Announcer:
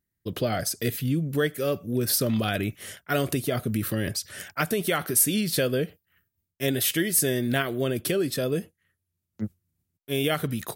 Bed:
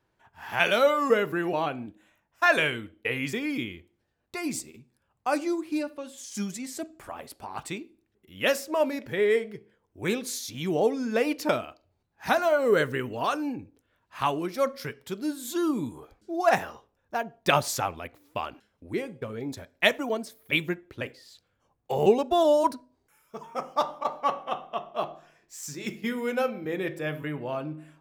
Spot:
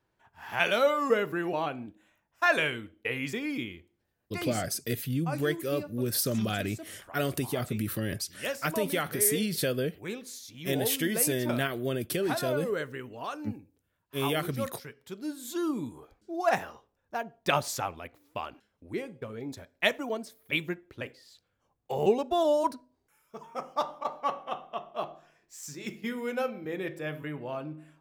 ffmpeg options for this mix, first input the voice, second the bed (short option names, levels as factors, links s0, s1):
-filter_complex "[0:a]adelay=4050,volume=0.596[s0];[1:a]volume=1.33,afade=t=out:st=4.48:d=0.23:silence=0.473151,afade=t=in:st=14.91:d=0.54:silence=0.530884[s1];[s0][s1]amix=inputs=2:normalize=0"